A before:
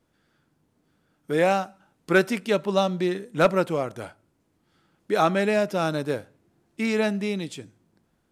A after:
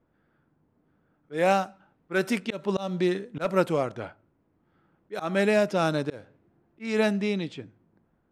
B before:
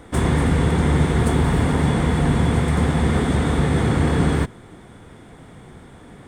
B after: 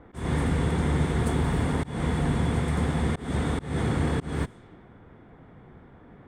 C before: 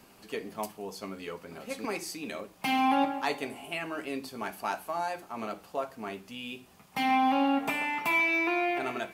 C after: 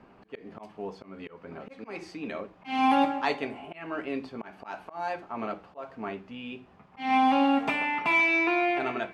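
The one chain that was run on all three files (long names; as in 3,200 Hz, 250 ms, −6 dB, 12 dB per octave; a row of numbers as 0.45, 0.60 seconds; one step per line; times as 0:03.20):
low-pass that shuts in the quiet parts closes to 1,600 Hz, open at −18.5 dBFS
volume swells 207 ms
loudness normalisation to −27 LKFS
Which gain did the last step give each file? +0.5, −7.0, +3.0 decibels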